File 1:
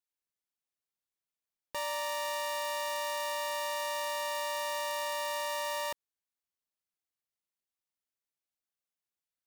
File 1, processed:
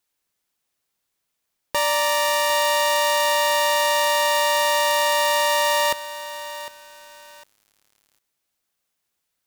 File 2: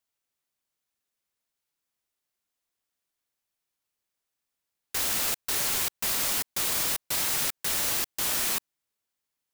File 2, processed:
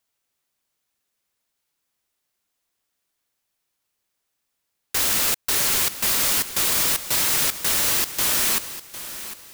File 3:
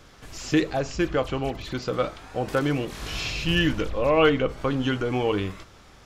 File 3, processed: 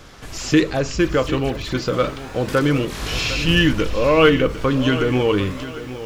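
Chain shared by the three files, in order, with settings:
dynamic equaliser 750 Hz, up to −8 dB, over −46 dBFS, Q 3.5
in parallel at −11 dB: gain into a clipping stage and back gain 27.5 dB
on the sum: feedback echo at a low word length 754 ms, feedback 35%, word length 8 bits, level −13 dB
loudness normalisation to −19 LKFS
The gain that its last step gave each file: +13.0, +5.0, +5.5 decibels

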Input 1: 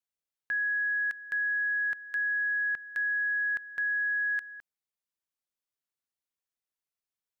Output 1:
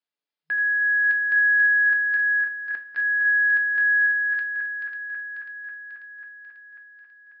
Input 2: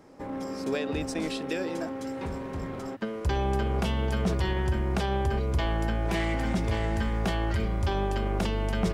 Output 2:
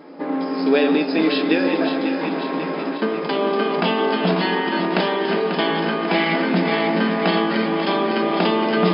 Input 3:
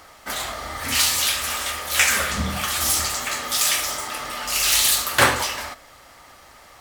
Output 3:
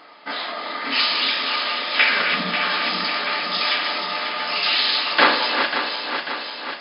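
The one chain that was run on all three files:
feedback delay that plays each chunk backwards 271 ms, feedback 77%, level −7 dB
brick-wall band-pass 160–5,200 Hz
coupled-rooms reverb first 0.27 s, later 3.2 s, from −21 dB, DRR 4 dB
loudness normalisation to −20 LKFS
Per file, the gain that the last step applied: +2.5, +10.5, +0.5 decibels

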